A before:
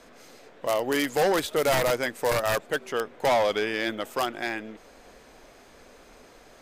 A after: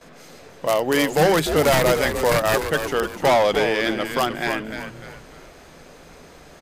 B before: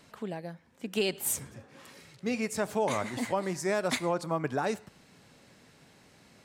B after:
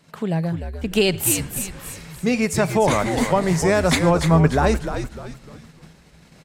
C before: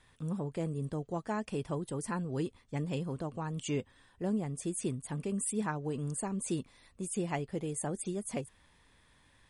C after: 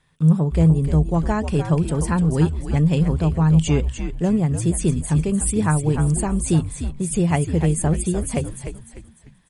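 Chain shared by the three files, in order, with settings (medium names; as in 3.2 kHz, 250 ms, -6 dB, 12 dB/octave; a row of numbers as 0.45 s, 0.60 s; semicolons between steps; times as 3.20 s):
gate -57 dBFS, range -12 dB; peaking EQ 160 Hz +13.5 dB 0.25 oct; on a send: frequency-shifting echo 299 ms, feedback 37%, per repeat -96 Hz, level -8 dB; on the sum: normalise loudness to -20 LUFS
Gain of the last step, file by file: +5.5 dB, +10.5 dB, +11.5 dB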